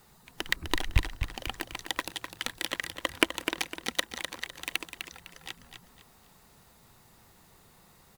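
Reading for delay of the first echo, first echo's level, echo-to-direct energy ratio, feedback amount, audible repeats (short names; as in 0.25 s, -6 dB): 0.253 s, -8.0 dB, -7.5 dB, 32%, 3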